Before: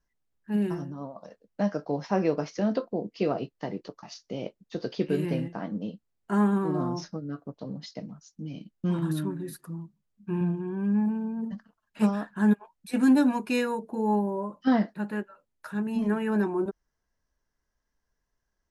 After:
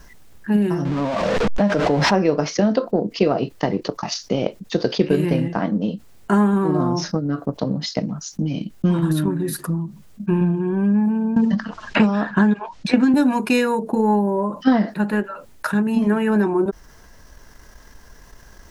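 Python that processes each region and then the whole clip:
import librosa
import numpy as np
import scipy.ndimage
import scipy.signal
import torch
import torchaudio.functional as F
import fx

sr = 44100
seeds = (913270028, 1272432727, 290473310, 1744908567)

y = fx.chain(x, sr, fx.zero_step(step_db=-35.0),
    fx.air_absorb(metres=130.0),
    fx.pre_swell(db_per_s=28.0), at=(0.85, 2.15))
y = fx.chain(y, sr, fx.lowpass(hz=6000.0, slope=24),
    fx.band_squash(depth_pct=100), at=(11.36, 13.14))
y = fx.transient(y, sr, attack_db=7, sustain_db=-2)
y = fx.env_flatten(y, sr, amount_pct=50)
y = y * 10.0 ** (1.5 / 20.0)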